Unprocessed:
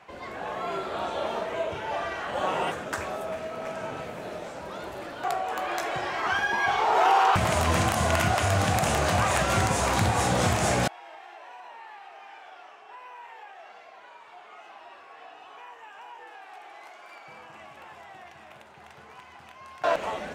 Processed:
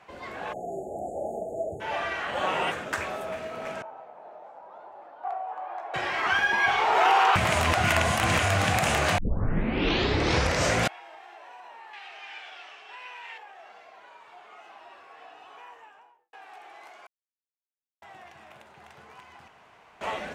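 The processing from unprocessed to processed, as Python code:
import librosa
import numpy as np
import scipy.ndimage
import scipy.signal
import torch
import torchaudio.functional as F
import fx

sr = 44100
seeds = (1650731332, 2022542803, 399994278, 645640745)

y = fx.spec_erase(x, sr, start_s=0.53, length_s=1.27, low_hz=850.0, high_hz=6500.0)
y = fx.bandpass_q(y, sr, hz=820.0, q=3.7, at=(3.82, 5.94))
y = fx.weighting(y, sr, curve='D', at=(11.93, 13.38))
y = fx.studio_fade_out(y, sr, start_s=15.67, length_s=0.66)
y = fx.edit(y, sr, fx.reverse_span(start_s=7.73, length_s=0.66),
    fx.tape_start(start_s=9.18, length_s=1.75),
    fx.silence(start_s=17.07, length_s=0.95),
    fx.room_tone_fill(start_s=19.48, length_s=0.53), tone=tone)
y = fx.dynamic_eq(y, sr, hz=2300.0, q=1.0, threshold_db=-43.0, ratio=4.0, max_db=7)
y = y * librosa.db_to_amplitude(-1.5)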